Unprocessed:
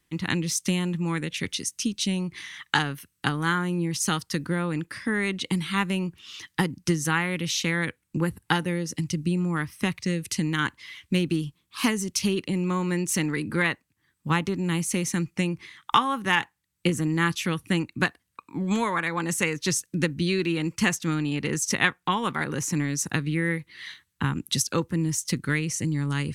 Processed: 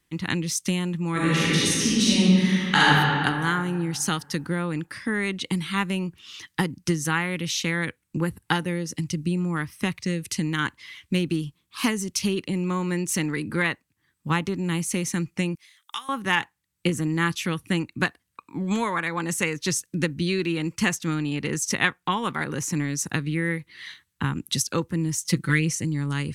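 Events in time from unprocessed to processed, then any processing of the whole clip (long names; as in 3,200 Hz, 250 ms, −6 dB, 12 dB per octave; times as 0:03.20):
0:01.11–0:02.92: thrown reverb, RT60 2.3 s, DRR −9 dB
0:15.55–0:16.09: first-order pre-emphasis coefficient 0.97
0:25.24–0:25.75: comb filter 6 ms, depth 86%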